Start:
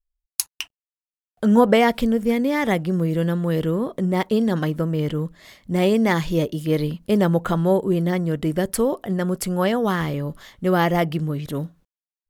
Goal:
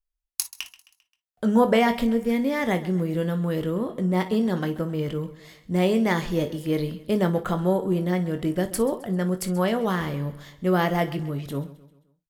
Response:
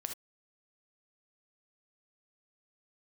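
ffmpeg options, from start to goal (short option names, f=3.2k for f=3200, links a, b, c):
-filter_complex "[0:a]aecho=1:1:132|264|396|528:0.133|0.0613|0.0282|0.013,asplit=2[a][b];[1:a]atrim=start_sample=2205,asetrate=83790,aresample=44100,adelay=22[c];[b][c]afir=irnorm=-1:irlink=0,volume=-2dB[d];[a][d]amix=inputs=2:normalize=0,volume=-4dB"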